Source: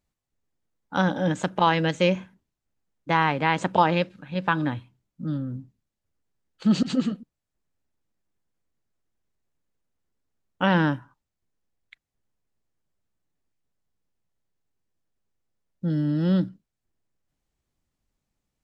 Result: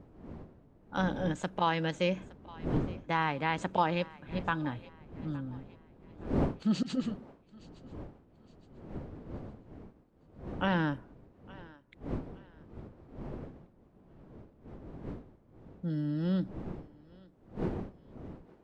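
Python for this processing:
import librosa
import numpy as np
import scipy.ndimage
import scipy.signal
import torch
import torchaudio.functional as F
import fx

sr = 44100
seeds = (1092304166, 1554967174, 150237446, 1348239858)

y = fx.dmg_wind(x, sr, seeds[0], corner_hz=300.0, level_db=-34.0)
y = fx.echo_thinned(y, sr, ms=866, feedback_pct=38, hz=420.0, wet_db=-20.5)
y = F.gain(torch.from_numpy(y), -8.5).numpy()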